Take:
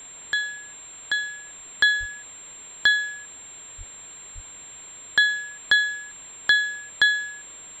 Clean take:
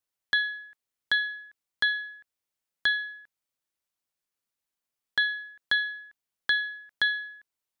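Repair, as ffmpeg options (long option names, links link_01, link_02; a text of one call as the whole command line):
ffmpeg -i in.wav -filter_complex "[0:a]bandreject=frequency=7400:width=30,asplit=3[link_01][link_02][link_03];[link_01]afade=type=out:start_time=1.99:duration=0.02[link_04];[link_02]highpass=frequency=140:width=0.5412,highpass=frequency=140:width=1.3066,afade=type=in:start_time=1.99:duration=0.02,afade=type=out:start_time=2.11:duration=0.02[link_05];[link_03]afade=type=in:start_time=2.11:duration=0.02[link_06];[link_04][link_05][link_06]amix=inputs=3:normalize=0,asplit=3[link_07][link_08][link_09];[link_07]afade=type=out:start_time=3.77:duration=0.02[link_10];[link_08]highpass=frequency=140:width=0.5412,highpass=frequency=140:width=1.3066,afade=type=in:start_time=3.77:duration=0.02,afade=type=out:start_time=3.89:duration=0.02[link_11];[link_09]afade=type=in:start_time=3.89:duration=0.02[link_12];[link_10][link_11][link_12]amix=inputs=3:normalize=0,asplit=3[link_13][link_14][link_15];[link_13]afade=type=out:start_time=4.34:duration=0.02[link_16];[link_14]highpass=frequency=140:width=0.5412,highpass=frequency=140:width=1.3066,afade=type=in:start_time=4.34:duration=0.02,afade=type=out:start_time=4.46:duration=0.02[link_17];[link_15]afade=type=in:start_time=4.46:duration=0.02[link_18];[link_16][link_17][link_18]amix=inputs=3:normalize=0,afwtdn=0.0056,asetnsamples=nb_out_samples=441:pad=0,asendcmd='1.58 volume volume -6.5dB',volume=0dB" out.wav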